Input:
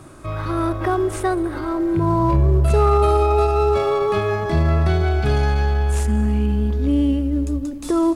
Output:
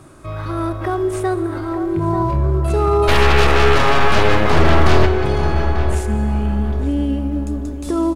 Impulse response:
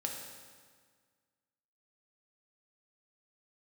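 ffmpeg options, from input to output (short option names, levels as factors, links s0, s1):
-filter_complex "[0:a]asplit=3[s0][s1][s2];[s0]afade=t=out:st=3.07:d=0.02[s3];[s1]aeval=exprs='0.447*(cos(1*acos(clip(val(0)/0.447,-1,1)))-cos(1*PI/2))+0.224*(cos(8*acos(clip(val(0)/0.447,-1,1)))-cos(8*PI/2))':c=same,afade=t=in:st=3.07:d=0.02,afade=t=out:st=5.05:d=0.02[s4];[s2]afade=t=in:st=5.05:d=0.02[s5];[s3][s4][s5]amix=inputs=3:normalize=0,asplit=2[s6][s7];[s7]adelay=891,lowpass=f=1700:p=1,volume=0.398,asplit=2[s8][s9];[s9]adelay=891,lowpass=f=1700:p=1,volume=0.36,asplit=2[s10][s11];[s11]adelay=891,lowpass=f=1700:p=1,volume=0.36,asplit=2[s12][s13];[s13]adelay=891,lowpass=f=1700:p=1,volume=0.36[s14];[s6][s8][s10][s12][s14]amix=inputs=5:normalize=0,asplit=2[s15][s16];[1:a]atrim=start_sample=2205,asetrate=32634,aresample=44100[s17];[s16][s17]afir=irnorm=-1:irlink=0,volume=0.211[s18];[s15][s18]amix=inputs=2:normalize=0,volume=0.708"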